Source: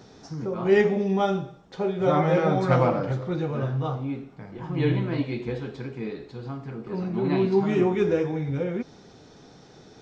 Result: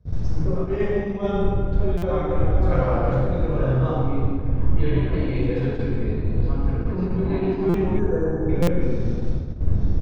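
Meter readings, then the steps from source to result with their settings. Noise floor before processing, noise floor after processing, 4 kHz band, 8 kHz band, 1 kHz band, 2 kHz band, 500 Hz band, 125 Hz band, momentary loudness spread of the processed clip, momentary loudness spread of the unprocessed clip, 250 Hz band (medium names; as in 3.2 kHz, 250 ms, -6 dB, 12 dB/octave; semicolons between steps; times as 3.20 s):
-51 dBFS, -27 dBFS, -3.5 dB, no reading, -2.0 dB, -2.5 dB, 0.0 dB, +5.5 dB, 4 LU, 15 LU, +1.5 dB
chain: wind noise 92 Hz -22 dBFS; dynamic bell 130 Hz, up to -7 dB, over -34 dBFS, Q 1.5; reverse; compression 4:1, threshold -32 dBFS, peak gain reduction 21 dB; reverse; simulated room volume 3200 m³, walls mixed, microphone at 5.4 m; time-frequency box 7.99–8.49 s, 1.8–5.7 kHz -25 dB; gate -25 dBFS, range -27 dB; treble shelf 3.3 kHz -7.5 dB; feedback delay 110 ms, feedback 53%, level -13 dB; buffer glitch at 1.97/7.69/8.62 s, samples 256, times 8; trim +2.5 dB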